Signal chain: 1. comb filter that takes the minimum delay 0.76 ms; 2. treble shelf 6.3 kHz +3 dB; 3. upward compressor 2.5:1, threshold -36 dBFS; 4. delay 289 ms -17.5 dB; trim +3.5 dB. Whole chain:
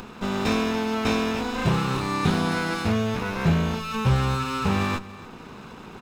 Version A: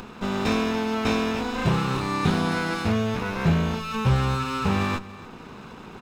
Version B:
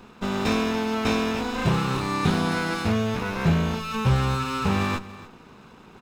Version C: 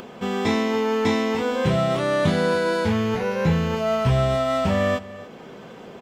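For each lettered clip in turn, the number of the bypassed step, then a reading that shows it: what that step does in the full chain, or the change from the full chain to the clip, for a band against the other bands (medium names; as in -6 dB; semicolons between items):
2, 8 kHz band -1.5 dB; 3, momentary loudness spread change -14 LU; 1, 500 Hz band +7.5 dB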